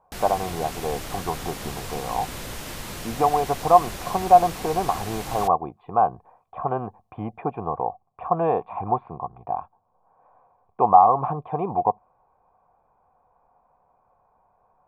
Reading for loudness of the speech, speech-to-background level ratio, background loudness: -23.5 LUFS, 11.0 dB, -34.5 LUFS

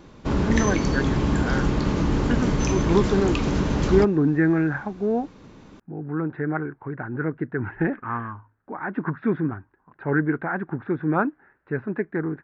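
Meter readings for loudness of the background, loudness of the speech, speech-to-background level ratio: -24.0 LUFS, -26.0 LUFS, -2.0 dB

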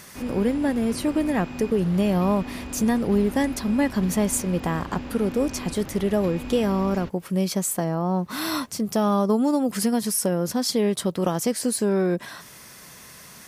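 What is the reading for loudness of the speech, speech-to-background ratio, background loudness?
-24.0 LUFS, 12.5 dB, -36.5 LUFS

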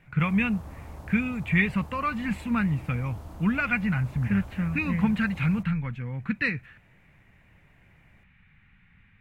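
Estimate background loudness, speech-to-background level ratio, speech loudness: -43.5 LUFS, 16.5 dB, -27.0 LUFS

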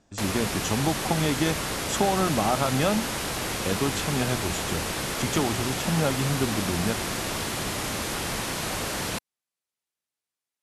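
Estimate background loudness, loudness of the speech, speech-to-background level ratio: -29.0 LUFS, -28.0 LUFS, 1.0 dB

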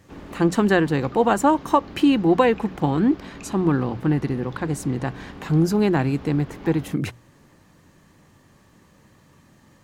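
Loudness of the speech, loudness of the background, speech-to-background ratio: -21.5 LUFS, -40.0 LUFS, 18.5 dB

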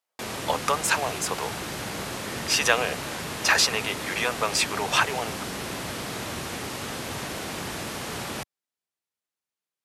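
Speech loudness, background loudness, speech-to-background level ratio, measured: -24.5 LUFS, -32.5 LUFS, 8.0 dB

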